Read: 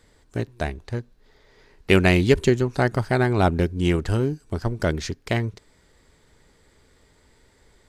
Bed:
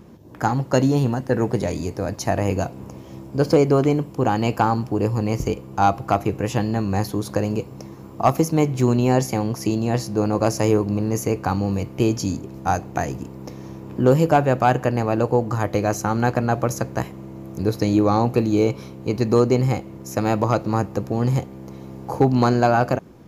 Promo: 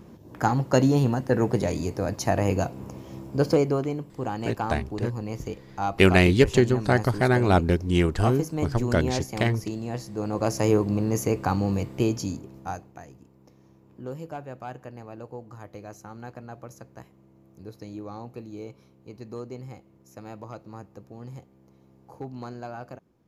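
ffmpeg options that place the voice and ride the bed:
ffmpeg -i stem1.wav -i stem2.wav -filter_complex "[0:a]adelay=4100,volume=-0.5dB[link_01];[1:a]volume=6dB,afade=type=out:start_time=3.3:duration=0.57:silence=0.375837,afade=type=in:start_time=10.16:duration=0.58:silence=0.398107,afade=type=out:start_time=11.77:duration=1.21:silence=0.125893[link_02];[link_01][link_02]amix=inputs=2:normalize=0" out.wav

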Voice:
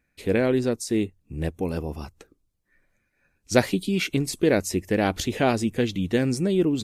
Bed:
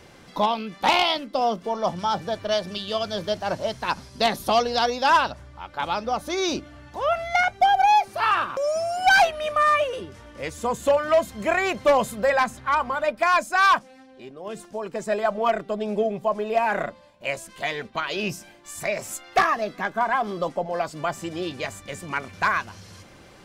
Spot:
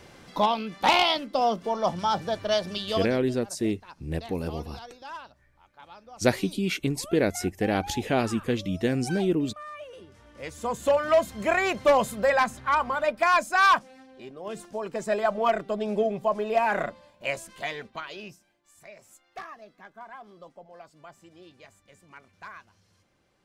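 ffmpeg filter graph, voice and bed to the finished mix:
ffmpeg -i stem1.wav -i stem2.wav -filter_complex "[0:a]adelay=2700,volume=-3dB[link_01];[1:a]volume=19.5dB,afade=type=out:start_time=2.94:duration=0.25:silence=0.0891251,afade=type=in:start_time=9.75:duration=1.33:silence=0.0944061,afade=type=out:start_time=17.27:duration=1.12:silence=0.105925[link_02];[link_01][link_02]amix=inputs=2:normalize=0" out.wav

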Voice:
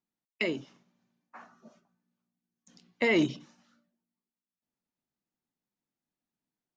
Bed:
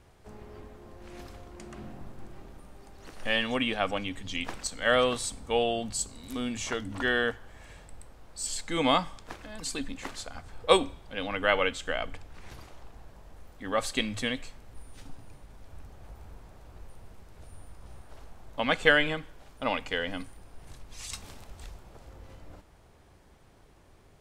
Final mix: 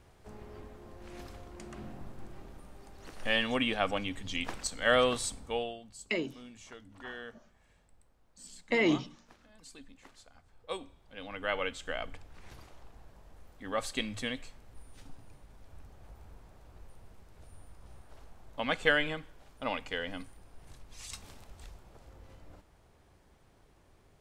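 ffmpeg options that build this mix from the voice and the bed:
ffmpeg -i stem1.wav -i stem2.wav -filter_complex "[0:a]adelay=5700,volume=-2dB[link_01];[1:a]volume=11dB,afade=type=out:start_time=5.27:duration=0.52:silence=0.158489,afade=type=in:start_time=10.76:duration=1.24:silence=0.237137[link_02];[link_01][link_02]amix=inputs=2:normalize=0" out.wav

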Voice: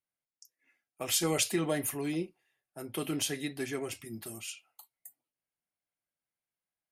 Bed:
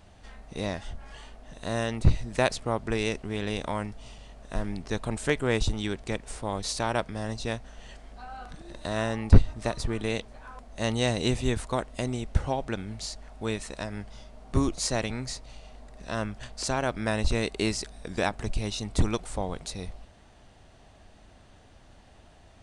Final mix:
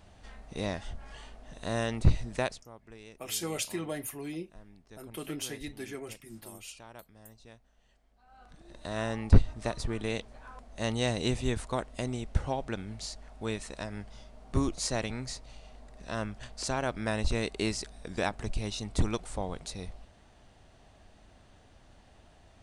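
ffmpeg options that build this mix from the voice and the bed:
ffmpeg -i stem1.wav -i stem2.wav -filter_complex "[0:a]adelay=2200,volume=-5dB[link_01];[1:a]volume=16.5dB,afade=type=out:start_time=2.24:duration=0.41:silence=0.1,afade=type=in:start_time=8.23:duration=0.88:silence=0.11885[link_02];[link_01][link_02]amix=inputs=2:normalize=0" out.wav

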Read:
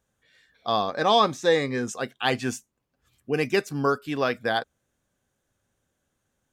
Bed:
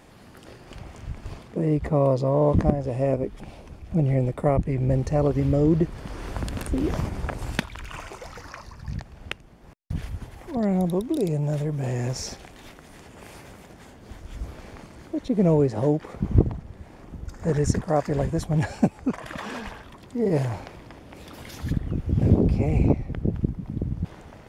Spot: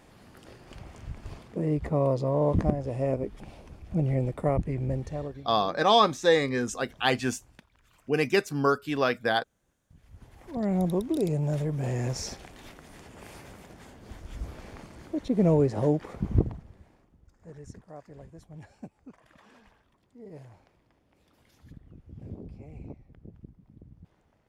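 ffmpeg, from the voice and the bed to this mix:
ffmpeg -i stem1.wav -i stem2.wav -filter_complex "[0:a]adelay=4800,volume=-0.5dB[link_01];[1:a]volume=20.5dB,afade=type=out:start_time=4.65:duration=0.83:silence=0.0707946,afade=type=in:start_time=10.03:duration=0.81:silence=0.0562341,afade=type=out:start_time=16.07:duration=1.03:silence=0.0944061[link_02];[link_01][link_02]amix=inputs=2:normalize=0" out.wav

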